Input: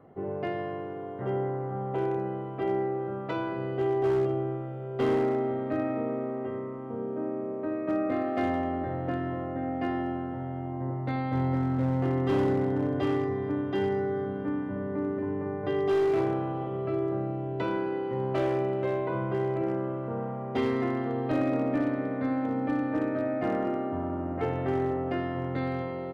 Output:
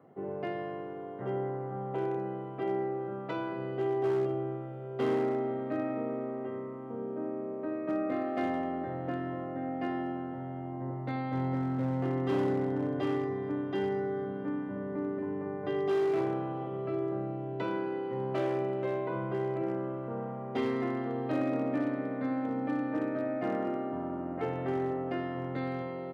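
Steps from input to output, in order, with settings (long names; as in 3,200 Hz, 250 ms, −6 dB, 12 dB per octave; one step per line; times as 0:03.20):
high-pass filter 120 Hz 24 dB per octave
level −3.5 dB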